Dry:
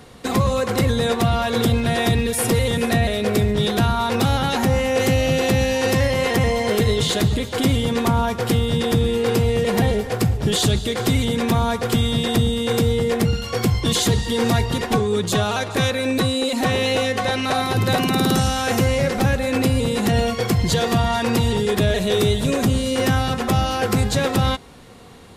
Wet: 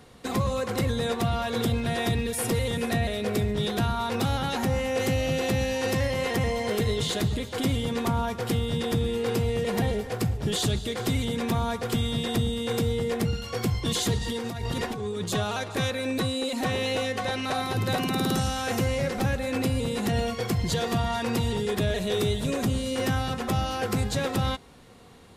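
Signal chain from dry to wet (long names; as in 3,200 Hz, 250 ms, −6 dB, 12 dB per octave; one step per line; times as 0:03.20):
0:14.17–0:15.24: compressor whose output falls as the input rises −23 dBFS, ratio −1
level −7.5 dB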